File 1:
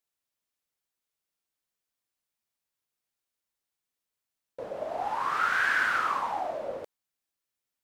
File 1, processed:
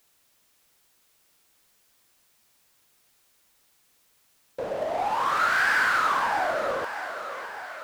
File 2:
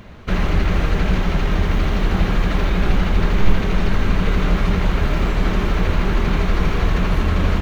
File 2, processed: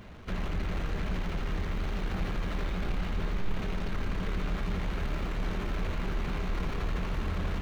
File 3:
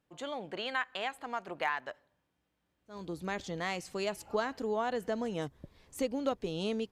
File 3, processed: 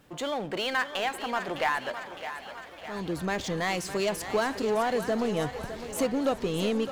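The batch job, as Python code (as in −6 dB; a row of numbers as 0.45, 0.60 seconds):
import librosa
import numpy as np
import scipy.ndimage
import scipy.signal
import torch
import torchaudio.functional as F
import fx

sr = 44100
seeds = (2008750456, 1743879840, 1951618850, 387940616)

y = fx.power_curve(x, sr, exponent=0.7)
y = fx.echo_thinned(y, sr, ms=609, feedback_pct=62, hz=360.0, wet_db=-10.0)
y = fx.echo_warbled(y, sr, ms=394, feedback_pct=79, rate_hz=2.8, cents=184, wet_db=-21)
y = y * 10.0 ** (-30 / 20.0) / np.sqrt(np.mean(np.square(y)))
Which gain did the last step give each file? +0.5, −18.5, +3.0 decibels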